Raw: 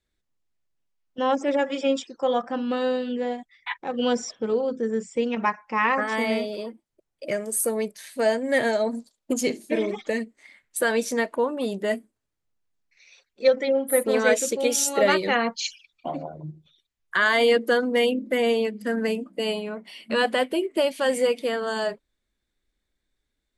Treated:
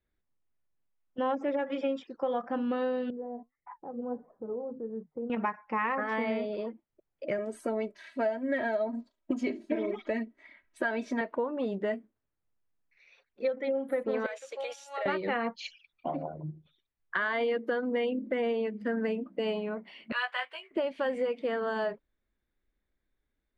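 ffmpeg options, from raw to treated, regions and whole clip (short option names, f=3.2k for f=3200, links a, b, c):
-filter_complex "[0:a]asettb=1/sr,asplit=3[a][b][c];[a]atrim=end=3.104[d];[b]atrim=start=3.1:end=5.3,asetpts=PTS-STARTPTS,afade=t=in:d=0.004:c=qsin,afade=t=out:st=2.196:d=0.004:c=qsin,lowpass=f=1k:w=0.5412,lowpass=f=1k:w=1.3066,acompressor=threshold=-36dB:ratio=1.5:attack=3.2:release=140:knee=1:detection=peak,flanger=delay=4.8:depth=4.4:regen=67:speed=1.6:shape=triangular[e];[c]atrim=start=5.296[f];[d][e]acrossfade=d=0.004:c1=hsin:c2=qsin[g];[g][f]acrossfade=d=0.004:c1=qsin:c2=hsin,asettb=1/sr,asplit=3[h][i][j];[h]atrim=end=7.384[k];[i]atrim=start=7.38:end=11.21,asetpts=PTS-STARTPTS,afade=t=in:d=0.004:c=qsin,afade=t=out:st=3.826:d=0.004:c=qsin,highshelf=f=8.2k:g=-4.5,aecho=1:1:3.1:0.86,atrim=end_sample=168903[l];[j]atrim=start=11.206[m];[k][l]acrossfade=d=0.004:c1=hsin:c2=qsin[n];[n][m]acrossfade=d=0.004:c1=qsin:c2=hsin,asettb=1/sr,asplit=3[o][p][q];[o]atrim=end=14.264[r];[p]atrim=start=14.26:end=15.06,asetpts=PTS-STARTPTS,afade=t=in:d=0.004:c=qsin,afade=t=out:st=0.796:d=0.004:c=qsin,highpass=f=630:w=0.5412,highpass=f=630:w=1.3066,highshelf=f=5.9k:g=9,acompressor=threshold=-28dB:ratio=5:attack=3.2:release=140:knee=1:detection=peak[s];[q]atrim=start=15.056[t];[r][s]acrossfade=d=0.004:c1=hsin:c2=qsin[u];[u][t]acrossfade=d=0.004:c1=qsin:c2=hsin,asettb=1/sr,asplit=3[v][w][x];[v]atrim=end=20.124[y];[w]atrim=start=20.12:end=20.71,asetpts=PTS-STARTPTS,afade=t=in:d=0.004:c=qsin,afade=t=out:st=0.586:d=0.004:c=qsin,highpass=f=1k:w=0.5412,highpass=f=1k:w=1.3066,asplit=2[z][aa];[aa]adelay=16,volume=-4dB[ab];[z][ab]amix=inputs=2:normalize=0,atrim=end_sample=26019[ac];[x]atrim=start=20.706[ad];[y][ac]acrossfade=d=0.004:c1=hsin:c2=qsin[ae];[ae][ad]acrossfade=d=0.004:c1=qsin:c2=hsin,lowpass=2.2k,acompressor=threshold=-25dB:ratio=6,volume=-2dB"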